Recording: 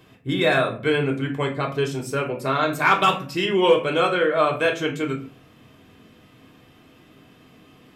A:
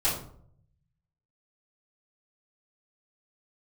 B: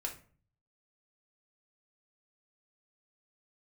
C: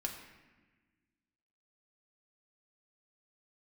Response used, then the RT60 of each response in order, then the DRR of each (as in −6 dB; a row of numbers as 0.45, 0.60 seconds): B; 0.60, 0.45, 1.3 seconds; −11.5, 0.0, 0.5 decibels